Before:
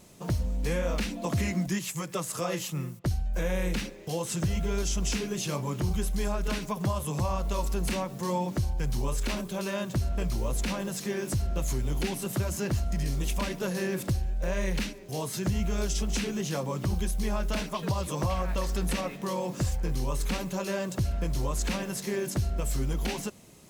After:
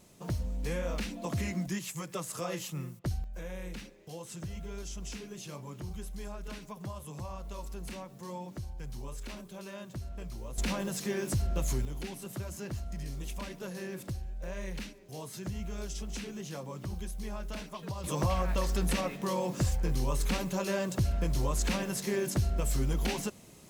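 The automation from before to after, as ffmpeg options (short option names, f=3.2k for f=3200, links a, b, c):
-af "asetnsamples=n=441:p=0,asendcmd='3.24 volume volume -12dB;10.58 volume volume -1.5dB;11.85 volume volume -9.5dB;18.04 volume volume -0.5dB',volume=-5dB"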